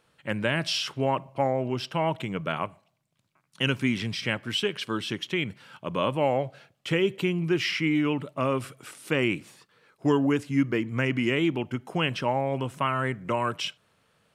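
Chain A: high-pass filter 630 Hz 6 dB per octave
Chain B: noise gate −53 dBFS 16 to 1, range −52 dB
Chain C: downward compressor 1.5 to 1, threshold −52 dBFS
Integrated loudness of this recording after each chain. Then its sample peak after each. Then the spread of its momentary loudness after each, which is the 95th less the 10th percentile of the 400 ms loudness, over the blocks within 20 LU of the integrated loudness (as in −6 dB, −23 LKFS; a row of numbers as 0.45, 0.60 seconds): −31.0, −27.5, −38.0 LKFS; −12.5, −10.0, −20.5 dBFS; 8, 8, 7 LU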